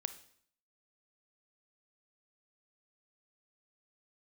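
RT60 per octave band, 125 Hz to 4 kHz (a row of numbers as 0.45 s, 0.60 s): 0.65 s, 0.70 s, 0.60 s, 0.60 s, 0.60 s, 0.60 s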